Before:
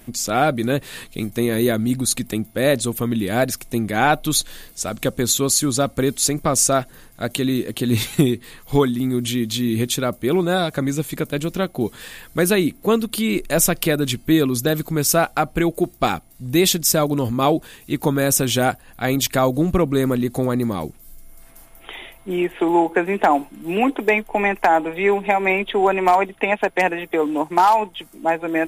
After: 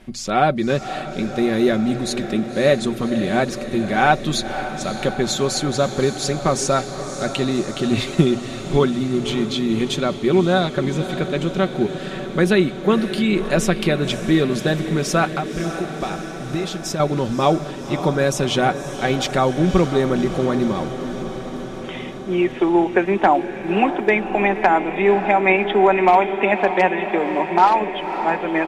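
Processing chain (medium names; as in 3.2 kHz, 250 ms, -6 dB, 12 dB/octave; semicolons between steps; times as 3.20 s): low-pass 4.6 kHz 12 dB/octave; hum notches 60/120 Hz; comb 5.3 ms, depth 43%; 15.30–17.00 s: compression, threshold -23 dBFS, peak gain reduction 13 dB; echo that smears into a reverb 563 ms, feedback 73%, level -11 dB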